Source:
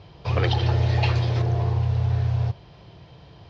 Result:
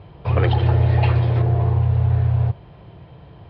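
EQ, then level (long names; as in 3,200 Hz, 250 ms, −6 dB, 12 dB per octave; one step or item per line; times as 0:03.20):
high-frequency loss of the air 420 metres
+5.0 dB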